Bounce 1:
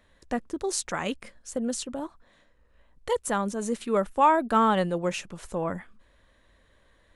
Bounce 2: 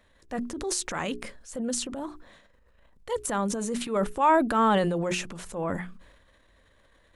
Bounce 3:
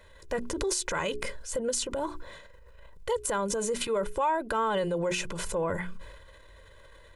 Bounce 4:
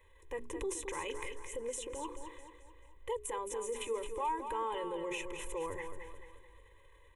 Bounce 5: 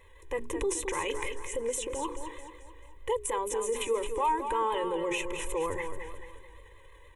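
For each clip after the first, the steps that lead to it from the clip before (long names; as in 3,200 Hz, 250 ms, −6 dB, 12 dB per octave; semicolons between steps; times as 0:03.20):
mains-hum notches 60/120/180/240/300/360/420 Hz; transient designer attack −6 dB, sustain +8 dB
comb filter 2 ms, depth 69%; downward compressor 4 to 1, threshold −33 dBFS, peak gain reduction 15.5 dB; level +5.5 dB
phaser with its sweep stopped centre 960 Hz, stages 8; on a send: repeating echo 218 ms, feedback 45%, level −8 dB; on the sum: level −7 dB
pitch vibrato 6.4 Hz 43 cents; level +7.5 dB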